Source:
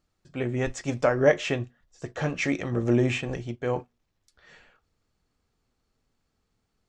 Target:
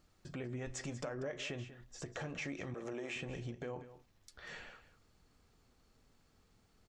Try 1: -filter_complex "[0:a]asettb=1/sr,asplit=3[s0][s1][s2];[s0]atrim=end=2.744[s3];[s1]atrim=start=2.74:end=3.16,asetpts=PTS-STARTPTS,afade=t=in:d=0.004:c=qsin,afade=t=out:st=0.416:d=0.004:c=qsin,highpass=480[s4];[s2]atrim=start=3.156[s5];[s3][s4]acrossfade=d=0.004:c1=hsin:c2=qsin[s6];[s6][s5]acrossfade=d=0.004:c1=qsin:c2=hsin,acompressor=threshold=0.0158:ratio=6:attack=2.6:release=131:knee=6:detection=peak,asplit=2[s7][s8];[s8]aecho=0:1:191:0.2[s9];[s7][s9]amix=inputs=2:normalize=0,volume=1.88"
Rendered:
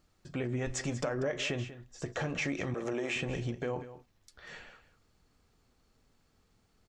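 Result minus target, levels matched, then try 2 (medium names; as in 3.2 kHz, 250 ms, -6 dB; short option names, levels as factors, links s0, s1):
compression: peak gain reduction -8.5 dB
-filter_complex "[0:a]asettb=1/sr,asplit=3[s0][s1][s2];[s0]atrim=end=2.744[s3];[s1]atrim=start=2.74:end=3.16,asetpts=PTS-STARTPTS,afade=t=in:d=0.004:c=qsin,afade=t=out:st=0.416:d=0.004:c=qsin,highpass=480[s4];[s2]atrim=start=3.156[s5];[s3][s4]acrossfade=d=0.004:c1=hsin:c2=qsin[s6];[s6][s5]acrossfade=d=0.004:c1=qsin:c2=hsin,acompressor=threshold=0.00501:ratio=6:attack=2.6:release=131:knee=6:detection=peak,asplit=2[s7][s8];[s8]aecho=0:1:191:0.2[s9];[s7][s9]amix=inputs=2:normalize=0,volume=1.88"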